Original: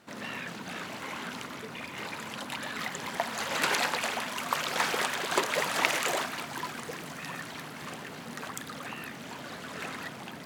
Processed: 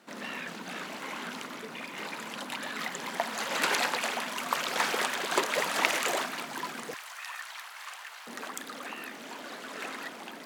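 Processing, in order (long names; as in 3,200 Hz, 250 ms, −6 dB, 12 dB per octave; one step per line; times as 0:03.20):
high-pass filter 180 Hz 24 dB per octave, from 0:06.94 860 Hz, from 0:08.27 240 Hz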